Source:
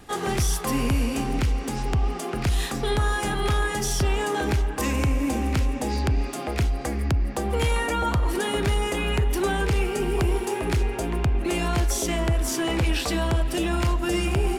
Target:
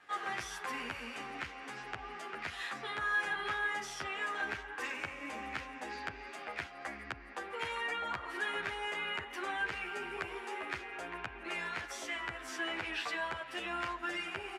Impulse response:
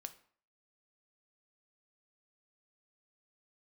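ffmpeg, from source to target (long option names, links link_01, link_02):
-filter_complex "[0:a]bandpass=frequency=1700:width_type=q:width=1.5:csg=0,asplit=2[link_01][link_02];[link_02]adelay=10.7,afreqshift=-0.75[link_03];[link_01][link_03]amix=inputs=2:normalize=1"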